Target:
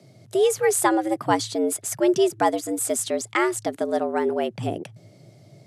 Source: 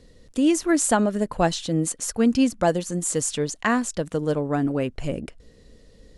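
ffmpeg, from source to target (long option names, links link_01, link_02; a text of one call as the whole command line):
ffmpeg -i in.wav -af "asetrate=48000,aresample=44100,afreqshift=100" out.wav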